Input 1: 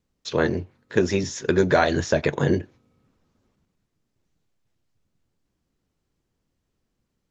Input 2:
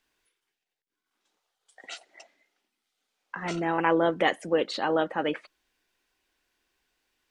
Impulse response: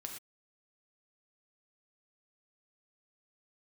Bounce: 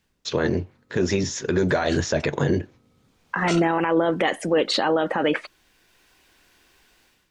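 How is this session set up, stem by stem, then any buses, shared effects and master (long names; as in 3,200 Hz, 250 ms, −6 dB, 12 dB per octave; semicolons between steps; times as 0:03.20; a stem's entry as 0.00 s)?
+3.0 dB, 0.00 s, no send, no processing
+2.5 dB, 0.00 s, no send, automatic gain control gain up to 14.5 dB; automatic ducking −16 dB, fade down 0.20 s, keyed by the first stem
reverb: not used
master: brickwall limiter −11.5 dBFS, peak gain reduction 13 dB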